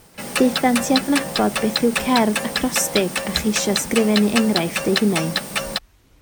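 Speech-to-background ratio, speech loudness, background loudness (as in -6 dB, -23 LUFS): 3.0 dB, -20.5 LUFS, -23.5 LUFS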